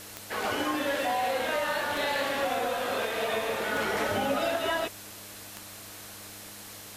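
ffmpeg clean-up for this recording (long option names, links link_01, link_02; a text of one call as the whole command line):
ffmpeg -i in.wav -af "adeclick=threshold=4,bandreject=frequency=101.9:width_type=h:width=4,bandreject=frequency=203.8:width_type=h:width=4,bandreject=frequency=305.7:width_type=h:width=4,bandreject=frequency=4100:width=30,afwtdn=0.0063" out.wav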